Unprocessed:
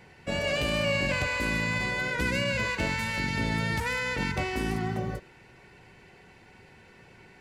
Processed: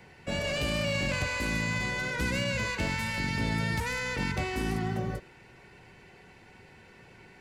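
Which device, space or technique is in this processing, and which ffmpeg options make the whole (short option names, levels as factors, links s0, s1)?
one-band saturation: -filter_complex "[0:a]acrossover=split=250|3500[s0][s1][s2];[s1]asoftclip=type=tanh:threshold=0.0355[s3];[s0][s3][s2]amix=inputs=3:normalize=0"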